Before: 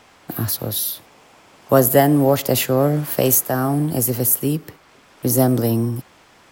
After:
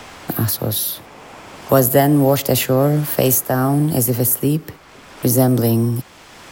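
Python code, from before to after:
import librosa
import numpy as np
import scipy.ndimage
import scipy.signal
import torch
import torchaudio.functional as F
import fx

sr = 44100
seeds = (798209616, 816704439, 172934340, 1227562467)

y = fx.low_shelf(x, sr, hz=88.0, db=6.5)
y = fx.band_squash(y, sr, depth_pct=40)
y = y * librosa.db_to_amplitude(1.5)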